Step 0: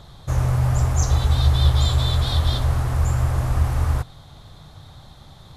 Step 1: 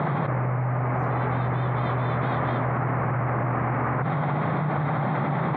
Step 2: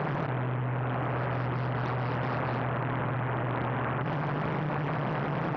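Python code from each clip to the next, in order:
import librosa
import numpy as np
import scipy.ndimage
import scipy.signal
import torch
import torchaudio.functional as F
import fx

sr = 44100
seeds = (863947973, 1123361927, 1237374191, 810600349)

y1 = scipy.signal.sosfilt(scipy.signal.cheby1(4, 1.0, [140.0, 2200.0], 'bandpass', fs=sr, output='sos'), x)
y1 = fx.env_flatten(y1, sr, amount_pct=100)
y2 = fx.doppler_dist(y1, sr, depth_ms=0.82)
y2 = y2 * 10.0 ** (-5.0 / 20.0)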